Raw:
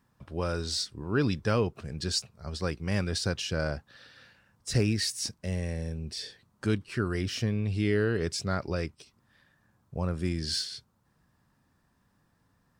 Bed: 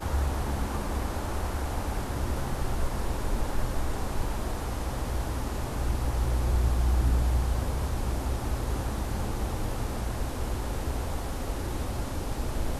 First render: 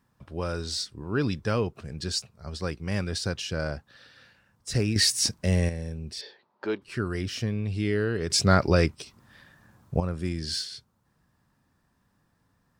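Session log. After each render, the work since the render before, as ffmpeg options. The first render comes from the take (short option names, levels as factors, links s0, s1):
-filter_complex "[0:a]asettb=1/sr,asplit=3[s0][s1][s2];[s0]atrim=end=6.214[s3];[s1]atrim=start=6.21:end=6.82,asetpts=PTS-STARTPTS,afade=t=in:d=0.004:c=qsin,afade=t=out:st=0.606:d=0.004:c=qsin,highpass=360,equalizer=f=380:t=q:w=4:g=8,equalizer=f=600:t=q:w=4:g=6,equalizer=f=890:t=q:w=4:g=10,equalizer=f=3100:t=q:w=4:g=-3,lowpass=f=4300:w=0.5412,lowpass=f=4300:w=1.3066[s4];[s2]atrim=start=6.816[s5];[s3][s4]acrossfade=d=0.004:c1=hsin:c2=qsin[s6];[s6][s5]acrossfade=d=0.004:c1=qsin:c2=hsin,asplit=5[s7][s8][s9][s10][s11];[s7]atrim=end=4.962[s12];[s8]atrim=start=4.958:end=5.692,asetpts=PTS-STARTPTS,volume=2.66[s13];[s9]atrim=start=5.688:end=8.302[s14];[s10]atrim=start=8.298:end=10.002,asetpts=PTS-STARTPTS,volume=3.35[s15];[s11]atrim=start=9.998[s16];[s12][s13]acrossfade=d=0.004:c1=hsin:c2=hsin[s17];[s17][s14]acrossfade=d=0.004:c1=hsin:c2=hsin[s18];[s18][s15]acrossfade=d=0.004:c1=hsin:c2=hsin[s19];[s19][s16]acrossfade=d=0.004:c1=hsin:c2=hsin"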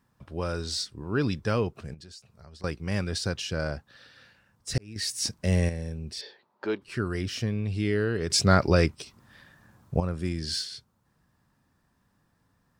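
-filter_complex "[0:a]asettb=1/sr,asplit=3[s0][s1][s2];[s0]atrim=end=1.944[s3];[s1]atrim=start=1.94:end=2.64,asetpts=PTS-STARTPTS,afade=t=in:d=0.004:c=qsin,afade=t=out:st=0.696:d=0.004:c=qsin,acompressor=threshold=0.00501:ratio=5:attack=3.2:release=140:knee=1:detection=peak[s4];[s2]atrim=start=2.636[s5];[s3][s4]acrossfade=d=0.004:c1=hsin:c2=qsin[s6];[s6][s5]acrossfade=d=0.004:c1=qsin:c2=hsin,asplit=2[s7][s8];[s7]atrim=end=4.78,asetpts=PTS-STARTPTS,afade=t=out:st=4.776:d=0.004:c=hsin[s9];[s8]atrim=start=4.78,asetpts=PTS-STARTPTS,afade=t=in:d=0.77[s10];[s9][s10]concat=n=2:v=0:a=1"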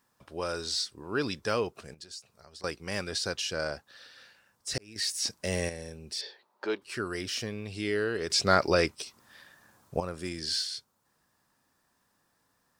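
-filter_complex "[0:a]acrossover=split=4500[s0][s1];[s1]acompressor=threshold=0.0112:ratio=4:attack=1:release=60[s2];[s0][s2]amix=inputs=2:normalize=0,bass=f=250:g=-13,treble=f=4000:g=6"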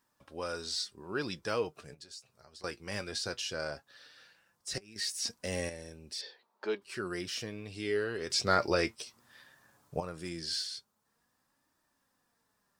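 -af "flanger=delay=3.1:depth=5.9:regen=59:speed=0.17:shape=triangular"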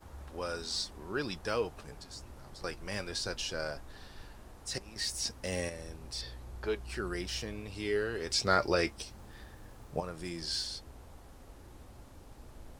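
-filter_complex "[1:a]volume=0.0944[s0];[0:a][s0]amix=inputs=2:normalize=0"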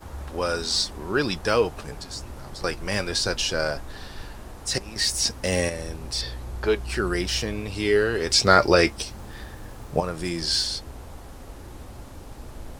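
-af "volume=3.76,alimiter=limit=0.891:level=0:latency=1"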